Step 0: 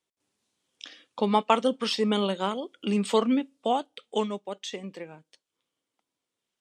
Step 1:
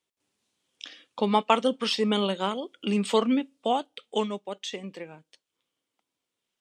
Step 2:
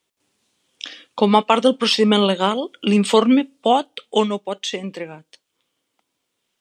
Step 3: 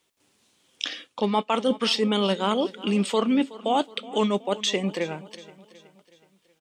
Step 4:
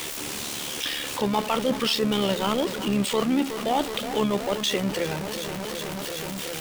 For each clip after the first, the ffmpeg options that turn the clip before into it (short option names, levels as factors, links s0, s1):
-af "equalizer=f=2800:w=1.5:g=2.5"
-af "alimiter=level_in=3.35:limit=0.891:release=50:level=0:latency=1,volume=0.891"
-af "areverse,acompressor=threshold=0.0708:ratio=6,areverse,aecho=1:1:371|742|1113|1484:0.119|0.0582|0.0285|0.014,volume=1.41"
-af "aeval=exprs='val(0)+0.5*0.075*sgn(val(0))':c=same,tremolo=f=72:d=0.519,volume=0.841"